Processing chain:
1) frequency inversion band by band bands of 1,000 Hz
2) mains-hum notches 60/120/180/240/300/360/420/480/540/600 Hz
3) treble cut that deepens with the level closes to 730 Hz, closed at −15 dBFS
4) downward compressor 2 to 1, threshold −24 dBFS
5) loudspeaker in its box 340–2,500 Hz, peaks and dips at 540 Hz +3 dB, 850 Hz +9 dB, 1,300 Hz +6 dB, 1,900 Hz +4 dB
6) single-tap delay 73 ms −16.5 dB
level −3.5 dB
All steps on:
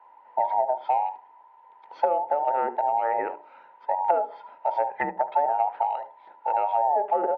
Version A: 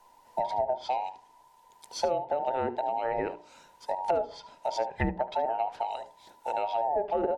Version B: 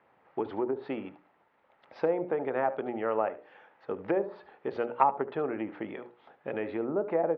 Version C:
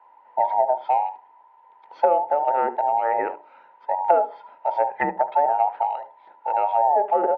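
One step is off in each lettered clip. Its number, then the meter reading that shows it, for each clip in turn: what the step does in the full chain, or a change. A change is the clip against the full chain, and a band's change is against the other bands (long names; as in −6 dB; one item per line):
5, 250 Hz band +7.5 dB
1, 250 Hz band +12.0 dB
4, change in integrated loudness +3.5 LU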